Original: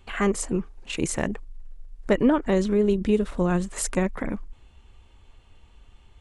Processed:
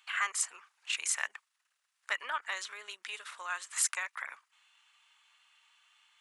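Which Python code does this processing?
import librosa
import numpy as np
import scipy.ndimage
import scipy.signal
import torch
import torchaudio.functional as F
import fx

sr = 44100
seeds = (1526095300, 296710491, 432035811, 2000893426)

y = scipy.signal.sosfilt(scipy.signal.butter(4, 1200.0, 'highpass', fs=sr, output='sos'), x)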